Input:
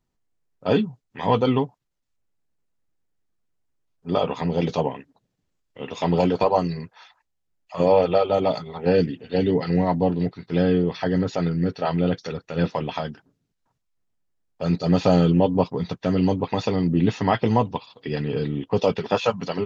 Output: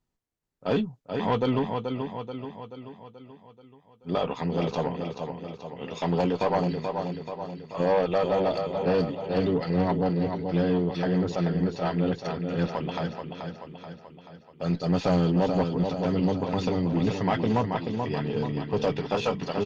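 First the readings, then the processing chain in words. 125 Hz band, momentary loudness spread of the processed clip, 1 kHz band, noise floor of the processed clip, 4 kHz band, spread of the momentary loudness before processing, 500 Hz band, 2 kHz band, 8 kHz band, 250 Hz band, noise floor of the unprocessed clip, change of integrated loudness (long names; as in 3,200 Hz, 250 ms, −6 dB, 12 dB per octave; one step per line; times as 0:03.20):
−4.0 dB, 13 LU, −4.0 dB, −57 dBFS, −3.5 dB, 11 LU, −4.5 dB, −2.5 dB, can't be measured, −3.5 dB, −76 dBFS, −4.5 dB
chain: on a send: repeating echo 432 ms, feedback 53%, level −7 dB
on the sum: tube saturation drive 13 dB, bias 0.3
level −3 dB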